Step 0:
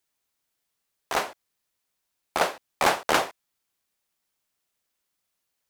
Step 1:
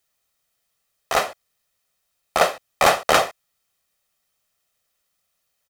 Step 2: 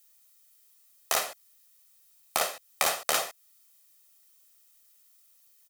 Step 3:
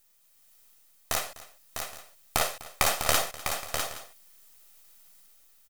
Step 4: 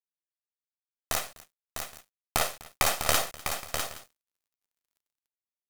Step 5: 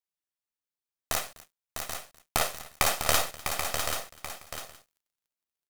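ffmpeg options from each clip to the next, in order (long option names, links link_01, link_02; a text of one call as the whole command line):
ffmpeg -i in.wav -af "aecho=1:1:1.6:0.46,volume=5dB" out.wav
ffmpeg -i in.wav -af "lowshelf=frequency=150:gain=-8.5,acompressor=threshold=-26dB:ratio=4,crystalizer=i=3.5:c=0,volume=-3dB" out.wav
ffmpeg -i in.wav -filter_complex "[0:a]aeval=exprs='if(lt(val(0),0),0.251*val(0),val(0))':channel_layout=same,dynaudnorm=framelen=100:gausssize=9:maxgain=7dB,asplit=2[link_01][link_02];[link_02]aecho=0:1:250|651|820:0.112|0.473|0.119[link_03];[link_01][link_03]amix=inputs=2:normalize=0" out.wav
ffmpeg -i in.wav -af "aeval=exprs='sgn(val(0))*max(abs(val(0))-0.00596,0)':channel_layout=same" out.wav
ffmpeg -i in.wav -af "aecho=1:1:783:0.422" out.wav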